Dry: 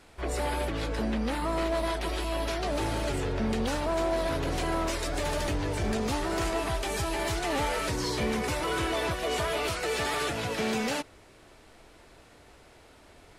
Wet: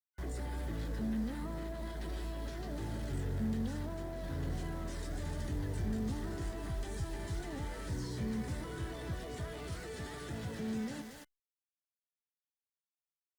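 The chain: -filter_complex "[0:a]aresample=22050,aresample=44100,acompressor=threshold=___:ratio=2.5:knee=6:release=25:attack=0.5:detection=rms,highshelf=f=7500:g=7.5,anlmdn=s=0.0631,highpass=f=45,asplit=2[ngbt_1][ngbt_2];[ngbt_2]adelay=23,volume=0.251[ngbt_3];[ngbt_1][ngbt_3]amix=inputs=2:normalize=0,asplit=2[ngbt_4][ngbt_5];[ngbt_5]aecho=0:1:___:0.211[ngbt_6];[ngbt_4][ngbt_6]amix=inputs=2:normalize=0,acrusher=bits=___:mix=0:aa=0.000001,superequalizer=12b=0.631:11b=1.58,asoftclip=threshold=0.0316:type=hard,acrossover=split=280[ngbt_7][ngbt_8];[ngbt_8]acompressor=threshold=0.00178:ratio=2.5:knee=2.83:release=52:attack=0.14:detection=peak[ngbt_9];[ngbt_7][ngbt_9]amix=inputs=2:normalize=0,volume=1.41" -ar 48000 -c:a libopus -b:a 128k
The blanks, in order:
0.0178, 226, 7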